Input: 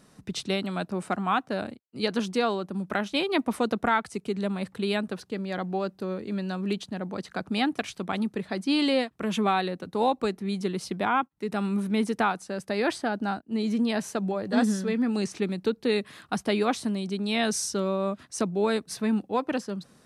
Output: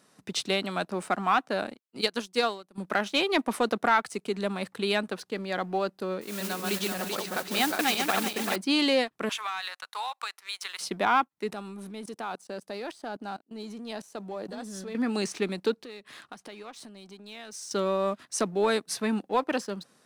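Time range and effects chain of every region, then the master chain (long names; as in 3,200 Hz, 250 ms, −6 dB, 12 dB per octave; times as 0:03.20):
0:02.01–0:02.78: high-shelf EQ 5,000 Hz +10.5 dB + expander for the loud parts 2.5 to 1, over −33 dBFS
0:06.21–0:08.56: feedback delay that plays each chunk backwards 193 ms, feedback 58%, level −1 dB + low-shelf EQ 450 Hz −5.5 dB + noise that follows the level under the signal 11 dB
0:09.29–0:10.81: high-pass filter 1,000 Hz 24 dB per octave + leveller curve on the samples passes 1 + downward compressor 12 to 1, threshold −32 dBFS
0:11.53–0:14.95: high-pass filter 81 Hz 6 dB per octave + parametric band 1,900 Hz −6.5 dB 1.2 octaves + output level in coarse steps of 18 dB
0:15.76–0:17.71: low-pass filter 9,900 Hz + downward compressor 4 to 1, threshold −43 dBFS
whole clip: high-pass filter 450 Hz 6 dB per octave; leveller curve on the samples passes 1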